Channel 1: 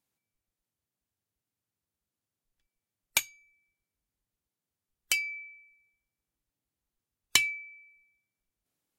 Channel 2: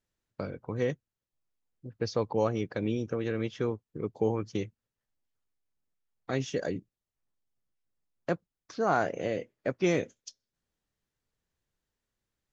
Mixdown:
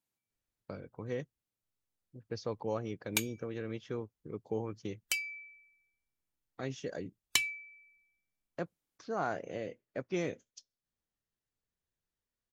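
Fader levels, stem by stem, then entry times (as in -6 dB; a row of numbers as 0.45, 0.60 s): -5.5, -8.0 dB; 0.00, 0.30 s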